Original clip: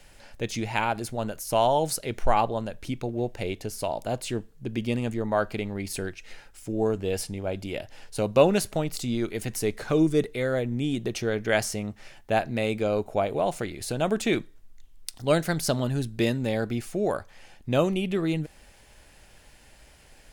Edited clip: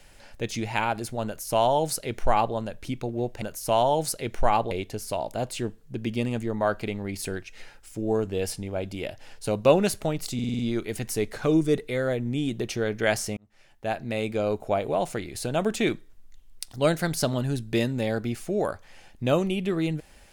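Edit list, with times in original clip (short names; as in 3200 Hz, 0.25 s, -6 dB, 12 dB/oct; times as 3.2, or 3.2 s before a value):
1.26–2.55 copy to 3.42
9.05 stutter 0.05 s, 6 plays
11.83–13.2 fade in equal-power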